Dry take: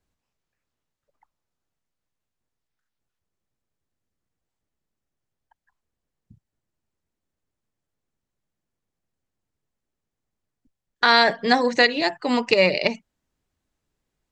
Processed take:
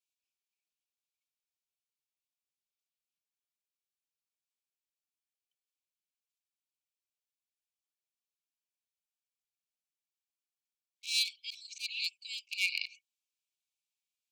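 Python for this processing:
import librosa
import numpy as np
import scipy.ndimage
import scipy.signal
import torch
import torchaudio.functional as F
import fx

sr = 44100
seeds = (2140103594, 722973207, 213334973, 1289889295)

y = np.minimum(x, 2.0 * 10.0 ** (-13.0 / 20.0) - x)
y = fx.brickwall_highpass(y, sr, low_hz=2200.0)
y = fx.auto_swell(y, sr, attack_ms=166.0)
y = y * 10.0 ** (-6.0 / 20.0)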